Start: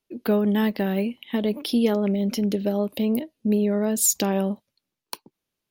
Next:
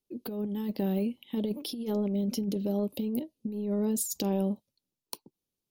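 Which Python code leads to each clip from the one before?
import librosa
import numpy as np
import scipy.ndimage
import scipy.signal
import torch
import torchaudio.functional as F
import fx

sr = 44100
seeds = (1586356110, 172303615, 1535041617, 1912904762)

y = fx.peak_eq(x, sr, hz=1700.0, db=-14.0, octaves=1.5)
y = fx.notch(y, sr, hz=650.0, q=12.0)
y = fx.over_compress(y, sr, threshold_db=-24.0, ratio=-0.5)
y = y * 10.0 ** (-5.0 / 20.0)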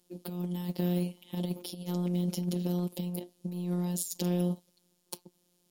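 y = fx.bin_compress(x, sr, power=0.6)
y = fx.robotise(y, sr, hz=177.0)
y = fx.upward_expand(y, sr, threshold_db=-41.0, expansion=1.5)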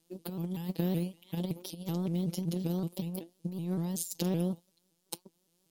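y = fx.transient(x, sr, attack_db=3, sustain_db=-1)
y = fx.vibrato_shape(y, sr, shape='saw_up', rate_hz=5.3, depth_cents=160.0)
y = y * 10.0 ** (-2.0 / 20.0)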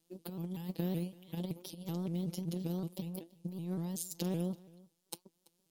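y = x + 10.0 ** (-23.0 / 20.0) * np.pad(x, (int(334 * sr / 1000.0), 0))[:len(x)]
y = y * 10.0 ** (-4.5 / 20.0)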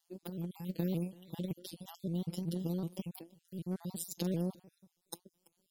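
y = fx.spec_dropout(x, sr, seeds[0], share_pct=35)
y = y * 10.0 ** (1.0 / 20.0)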